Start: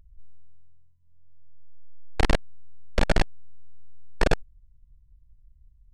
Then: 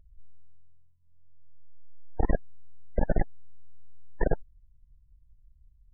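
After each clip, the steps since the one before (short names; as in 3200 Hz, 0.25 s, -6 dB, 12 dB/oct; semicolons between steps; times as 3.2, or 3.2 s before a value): loudest bins only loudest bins 32; gain -3 dB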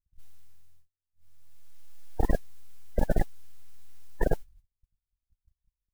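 gate -50 dBFS, range -31 dB; modulation noise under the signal 30 dB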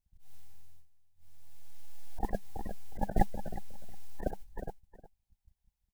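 thirty-one-band EQ 200 Hz +8 dB, 800 Hz +10 dB, 1250 Hz -7 dB; feedback echo 0.362 s, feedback 17%, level -19 dB; auto swell 0.168 s; gain +3 dB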